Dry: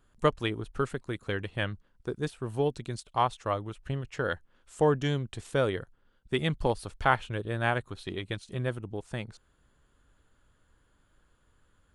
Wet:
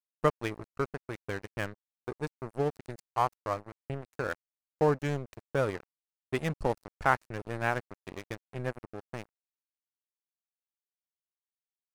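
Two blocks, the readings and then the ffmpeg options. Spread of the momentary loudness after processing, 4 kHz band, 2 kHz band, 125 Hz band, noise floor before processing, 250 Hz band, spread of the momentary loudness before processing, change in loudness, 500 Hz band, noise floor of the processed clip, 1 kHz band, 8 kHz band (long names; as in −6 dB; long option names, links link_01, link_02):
15 LU, −9.5 dB, −2.0 dB, −4.5 dB, −68 dBFS, −3.5 dB, 11 LU, −2.0 dB, −2.0 dB, below −85 dBFS, −1.5 dB, −3.0 dB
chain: -af "aeval=exprs='sgn(val(0))*max(abs(val(0))-0.0168,0)':channel_layout=same,equalizer=frequency=3300:width_type=o:width=0.37:gain=-10.5,agate=range=-31dB:threshold=-55dB:ratio=16:detection=peak"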